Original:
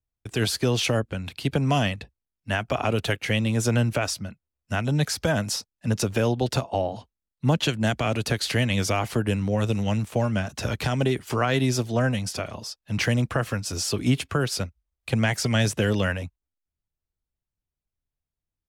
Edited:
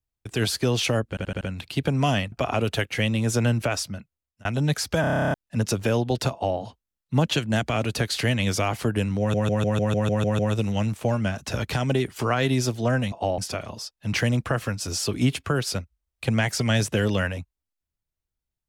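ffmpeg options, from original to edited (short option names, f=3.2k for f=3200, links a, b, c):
-filter_complex "[0:a]asplit=28[a][b][c][d][e][f][g][h][i][j][k][l][m][n][o][p][q][r][s][t][u][v][w][x][y][z][aa][ab];[a]atrim=end=1.172[ac];[b]atrim=start=1.088:end=1.172[ad];[c]atrim=start=1.088:end=1.172[ae];[d]atrim=start=1.088:end=1.172[af];[e]atrim=start=1.088:end=2.002[ag];[f]atrim=start=2.628:end=4.76,asetpts=PTS-STARTPTS,afade=t=out:st=1.622:d=0.51:c=qsin[ah];[g]atrim=start=4.76:end=5.352,asetpts=PTS-STARTPTS,afade=t=in:d=0.004:c=hsin[ai];[h]atrim=start=5.318:end=5.352[aj];[i]atrim=start=5.318:end=5.352[ak];[j]atrim=start=5.318:end=5.352[al];[k]atrim=start=5.318:end=5.352[am];[l]atrim=start=5.318:end=5.352[an];[m]atrim=start=5.318:end=5.352[ao];[n]atrim=start=5.318:end=5.352[ap];[o]atrim=start=5.318:end=5.352[aq];[p]atrim=start=5.318:end=5.352[ar];[q]atrim=start=5.318:end=5.352[as];[r]atrim=start=5.648:end=9.652[at];[s]atrim=start=9.498:end=9.652[au];[t]atrim=start=9.498:end=9.652[av];[u]atrim=start=9.498:end=9.652[aw];[v]atrim=start=9.498:end=9.652[ax];[w]atrim=start=9.498:end=9.652[ay];[x]atrim=start=9.498:end=9.652[az];[y]atrim=start=9.498:end=9.652[ba];[z]atrim=start=9.498:end=12.232[bb];[aa]atrim=start=6.628:end=6.892[bc];[ab]atrim=start=12.228[bd];[ac][ad]acrossfade=d=0.004:c1=hsin:c2=hsin[be];[be][ae]acrossfade=d=0.004:c1=hsin:c2=hsin[bf];[bf][af]acrossfade=d=0.004:c1=hsin:c2=hsin[bg];[bg][ag]acrossfade=d=0.004:c1=hsin:c2=hsin[bh];[ah][ai]concat=n=2:v=0:a=1[bi];[bh][bi]acrossfade=d=0.004:c1=hsin:c2=hsin[bj];[bj][aj]acrossfade=d=0.004:c1=hsin:c2=hsin[bk];[bk][ak]acrossfade=d=0.004:c1=hsin:c2=hsin[bl];[bl][al]acrossfade=d=0.004:c1=hsin:c2=hsin[bm];[bm][am]acrossfade=d=0.004:c1=hsin:c2=hsin[bn];[bn][an]acrossfade=d=0.004:c1=hsin:c2=hsin[bo];[bo][ao]acrossfade=d=0.004:c1=hsin:c2=hsin[bp];[bp][ap]acrossfade=d=0.004:c1=hsin:c2=hsin[bq];[bq][aq]acrossfade=d=0.004:c1=hsin:c2=hsin[br];[br][ar]acrossfade=d=0.004:c1=hsin:c2=hsin[bs];[bs][as]acrossfade=d=0.004:c1=hsin:c2=hsin[bt];[bt][at]acrossfade=d=0.004:c1=hsin:c2=hsin[bu];[bu][au]acrossfade=d=0.004:c1=hsin:c2=hsin[bv];[bv][av]acrossfade=d=0.004:c1=hsin:c2=hsin[bw];[bw][aw]acrossfade=d=0.004:c1=hsin:c2=hsin[bx];[bx][ax]acrossfade=d=0.004:c1=hsin:c2=hsin[by];[by][ay]acrossfade=d=0.004:c1=hsin:c2=hsin[bz];[bz][az]acrossfade=d=0.004:c1=hsin:c2=hsin[ca];[ca][ba]acrossfade=d=0.004:c1=hsin:c2=hsin[cb];[cb][bb]acrossfade=d=0.004:c1=hsin:c2=hsin[cc];[cc][bc]acrossfade=d=0.004:c1=hsin:c2=hsin[cd];[cd][bd]acrossfade=d=0.004:c1=hsin:c2=hsin"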